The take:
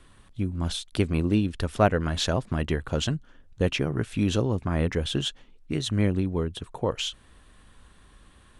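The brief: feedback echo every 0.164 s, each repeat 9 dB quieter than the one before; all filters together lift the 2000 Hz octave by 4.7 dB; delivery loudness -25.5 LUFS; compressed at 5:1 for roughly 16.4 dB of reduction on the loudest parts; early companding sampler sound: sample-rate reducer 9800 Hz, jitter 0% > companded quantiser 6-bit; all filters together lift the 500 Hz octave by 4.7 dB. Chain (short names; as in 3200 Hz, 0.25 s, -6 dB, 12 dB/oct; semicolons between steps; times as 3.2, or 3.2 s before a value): bell 500 Hz +5.5 dB; bell 2000 Hz +6 dB; compressor 5:1, threshold -30 dBFS; feedback echo 0.164 s, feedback 35%, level -9 dB; sample-rate reducer 9800 Hz, jitter 0%; companded quantiser 6-bit; gain +8.5 dB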